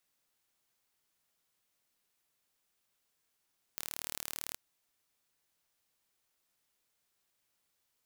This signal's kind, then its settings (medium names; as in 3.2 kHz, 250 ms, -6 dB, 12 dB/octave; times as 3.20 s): pulse train 37.9 per s, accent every 0, -11.5 dBFS 0.77 s